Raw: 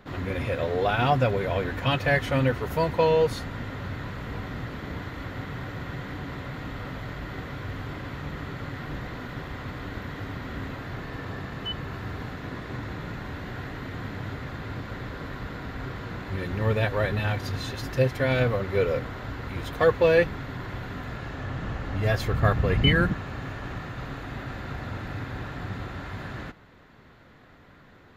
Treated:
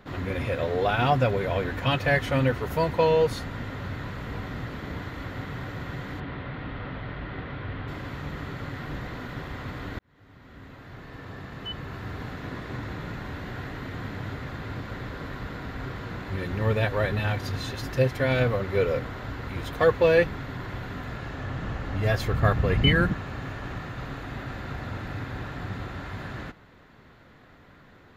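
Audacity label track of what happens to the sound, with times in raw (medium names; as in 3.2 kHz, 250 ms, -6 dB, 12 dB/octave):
6.200000	7.880000	low-pass 3.7 kHz 24 dB/octave
9.990000	12.410000	fade in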